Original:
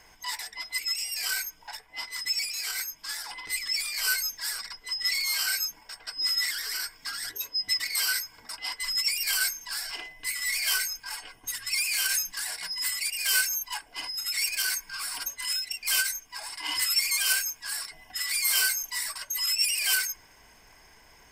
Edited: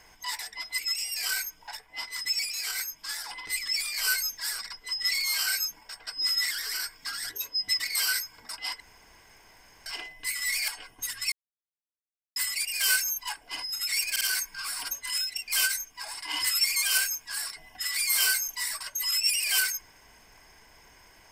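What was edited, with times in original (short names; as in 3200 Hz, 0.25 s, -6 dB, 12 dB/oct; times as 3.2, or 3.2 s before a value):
8.8–9.86 room tone
10.68–11.13 cut
11.77–12.81 mute
14.56 stutter 0.05 s, 3 plays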